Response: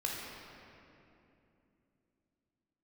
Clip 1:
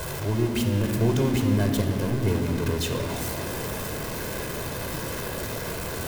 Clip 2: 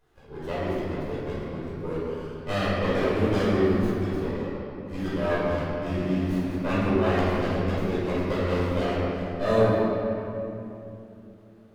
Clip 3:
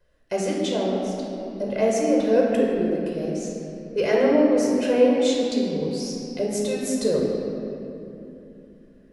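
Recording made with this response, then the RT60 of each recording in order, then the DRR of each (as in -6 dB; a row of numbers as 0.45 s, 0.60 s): 3; 3.0 s, 2.9 s, 2.9 s; 3.5 dB, -11.0 dB, -3.5 dB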